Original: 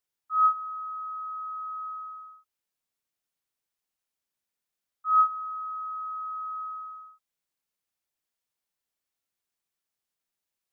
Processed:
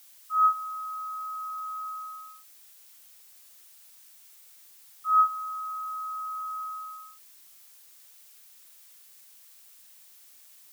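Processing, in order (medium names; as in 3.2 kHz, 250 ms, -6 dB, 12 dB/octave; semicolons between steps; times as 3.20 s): added noise blue -54 dBFS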